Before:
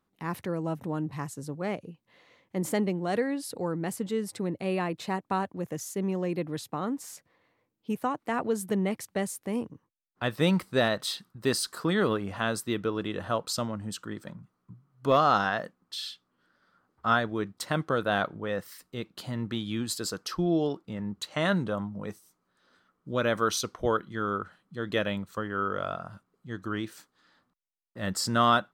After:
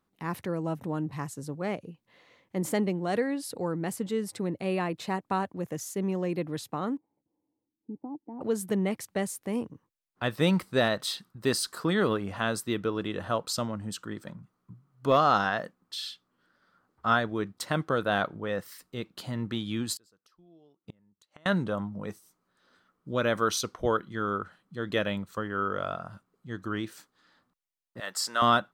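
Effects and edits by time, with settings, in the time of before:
6.97–8.41 vocal tract filter u
19.94–21.46 flipped gate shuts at -30 dBFS, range -32 dB
28–28.42 HPF 700 Hz

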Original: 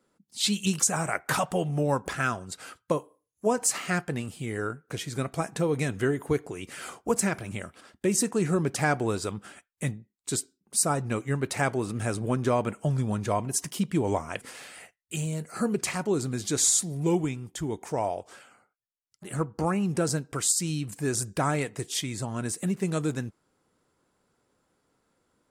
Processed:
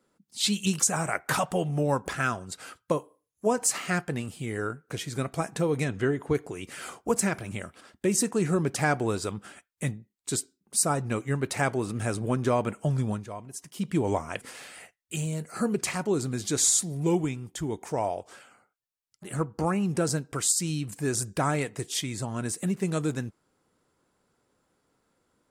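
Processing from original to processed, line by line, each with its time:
5.84–6.35 air absorption 65 m
13.09–13.89 dip -12 dB, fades 0.17 s

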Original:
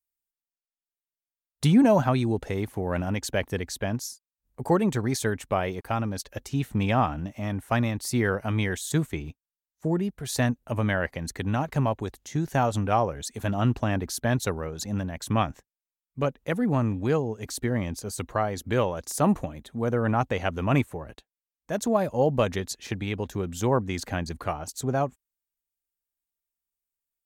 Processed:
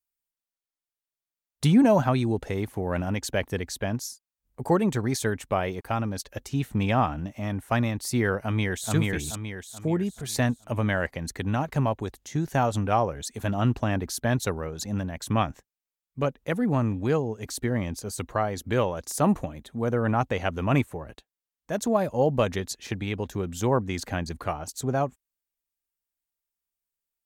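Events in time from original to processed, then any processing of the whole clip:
8.4–8.92 echo throw 0.43 s, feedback 40%, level -1 dB

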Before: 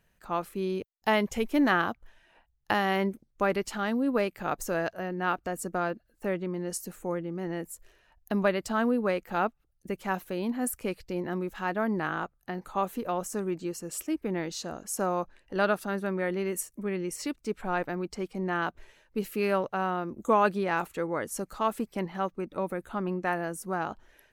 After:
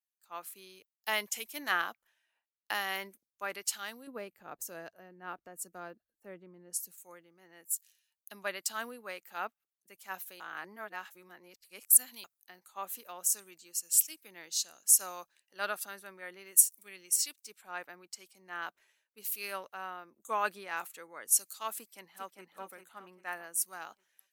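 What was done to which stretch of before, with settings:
4.07–6.98 tilt shelf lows +8.5 dB, about 700 Hz
10.4–12.24 reverse
21.76–22.43 echo throw 0.4 s, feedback 45%, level -5 dB
whole clip: differentiator; three-band expander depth 70%; gain +5 dB

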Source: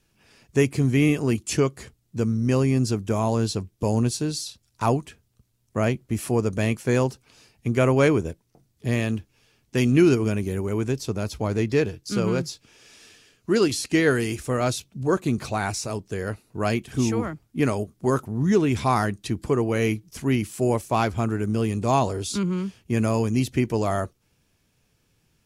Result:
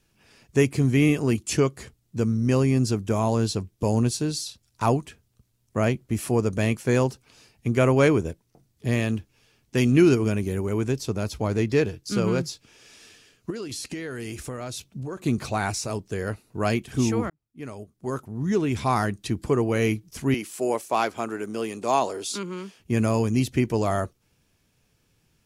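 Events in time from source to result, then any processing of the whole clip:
13.5–15.22 compressor 20:1, threshold -29 dBFS
17.3–19.25 fade in
20.34–22.8 HPF 350 Hz

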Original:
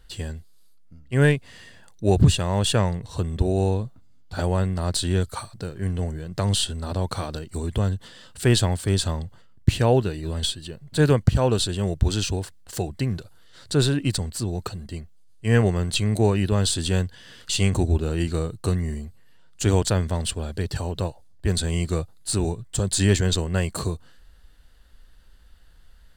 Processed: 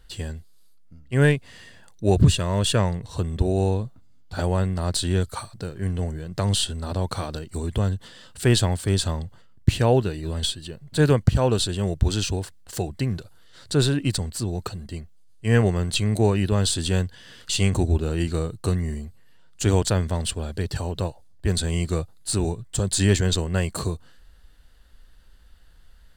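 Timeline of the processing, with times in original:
2.14–2.79 Butterworth band-stop 790 Hz, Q 5.1

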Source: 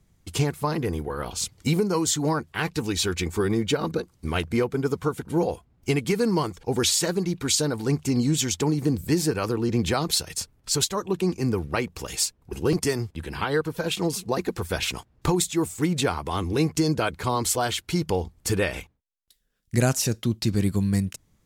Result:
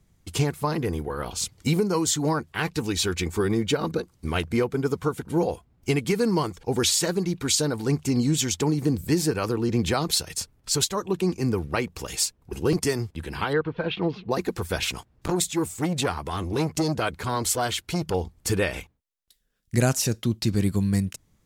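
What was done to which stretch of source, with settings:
13.53–14.31 inverse Chebyshev low-pass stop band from 7800 Hz, stop band 50 dB
14.87–18.14 core saturation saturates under 570 Hz

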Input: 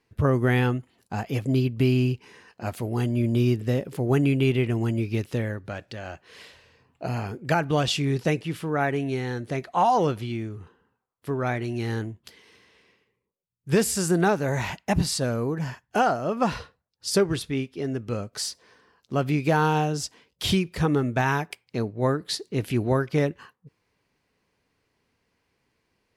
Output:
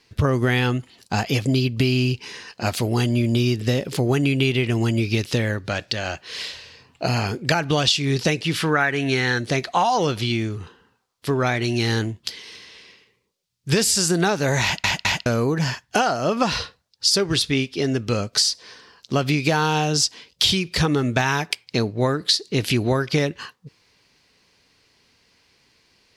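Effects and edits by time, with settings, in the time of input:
8.57–9.39 bell 1600 Hz +9 dB 1 oct
14.63 stutter in place 0.21 s, 3 plays
whole clip: bell 4600 Hz +13 dB 1.8 oct; compressor, threshold -24 dBFS; gain +7.5 dB

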